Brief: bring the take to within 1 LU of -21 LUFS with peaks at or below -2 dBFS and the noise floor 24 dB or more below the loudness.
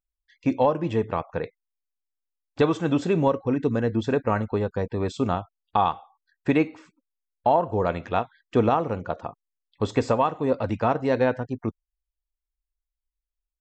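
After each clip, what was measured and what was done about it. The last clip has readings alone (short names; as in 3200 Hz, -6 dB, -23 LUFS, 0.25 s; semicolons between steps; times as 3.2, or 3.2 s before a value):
loudness -25.0 LUFS; peak -10.0 dBFS; loudness target -21.0 LUFS
-> gain +4 dB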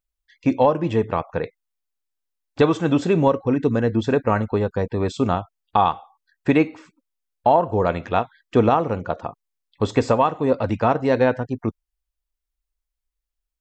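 loudness -21.0 LUFS; peak -6.0 dBFS; noise floor -83 dBFS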